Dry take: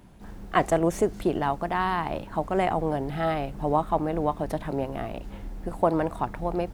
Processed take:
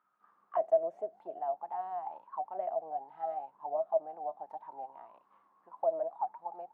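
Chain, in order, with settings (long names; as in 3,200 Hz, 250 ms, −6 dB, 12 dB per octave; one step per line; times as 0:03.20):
envelope filter 640–1,300 Hz, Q 19, down, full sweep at −20 dBFS
Bessel high-pass filter 170 Hz, order 2
level +2 dB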